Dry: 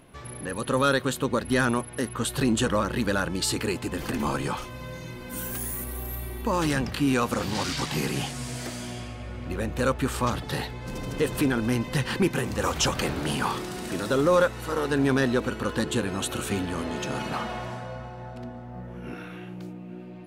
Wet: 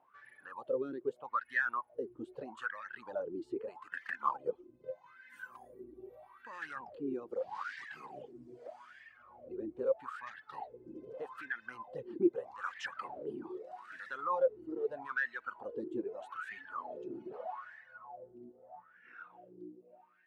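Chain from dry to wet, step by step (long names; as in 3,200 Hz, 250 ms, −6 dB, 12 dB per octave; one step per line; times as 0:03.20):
LFO wah 0.8 Hz 330–1,800 Hz, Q 10
reverb reduction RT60 0.98 s
0:03.86–0:05.06: transient designer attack +7 dB, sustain −4 dB
level +1.5 dB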